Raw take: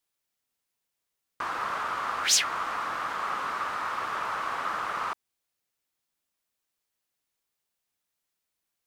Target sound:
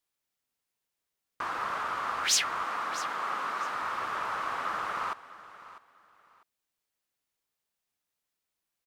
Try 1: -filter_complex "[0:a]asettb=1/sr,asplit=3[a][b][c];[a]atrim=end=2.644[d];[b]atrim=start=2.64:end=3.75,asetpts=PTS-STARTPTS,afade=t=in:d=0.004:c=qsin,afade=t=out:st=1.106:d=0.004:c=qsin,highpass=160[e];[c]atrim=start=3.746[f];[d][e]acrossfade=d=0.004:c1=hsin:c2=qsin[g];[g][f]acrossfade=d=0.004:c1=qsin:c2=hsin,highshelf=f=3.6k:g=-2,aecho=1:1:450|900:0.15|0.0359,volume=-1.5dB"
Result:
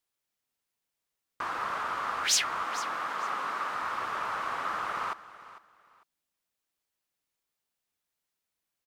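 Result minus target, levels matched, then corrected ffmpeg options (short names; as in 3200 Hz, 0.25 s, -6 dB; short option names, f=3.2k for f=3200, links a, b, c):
echo 0.199 s early
-filter_complex "[0:a]asettb=1/sr,asplit=3[a][b][c];[a]atrim=end=2.644[d];[b]atrim=start=2.64:end=3.75,asetpts=PTS-STARTPTS,afade=t=in:d=0.004:c=qsin,afade=t=out:st=1.106:d=0.004:c=qsin,highpass=160[e];[c]atrim=start=3.746[f];[d][e]acrossfade=d=0.004:c1=hsin:c2=qsin[g];[g][f]acrossfade=d=0.004:c1=qsin:c2=hsin,highshelf=f=3.6k:g=-2,aecho=1:1:649|1298:0.15|0.0359,volume=-1.5dB"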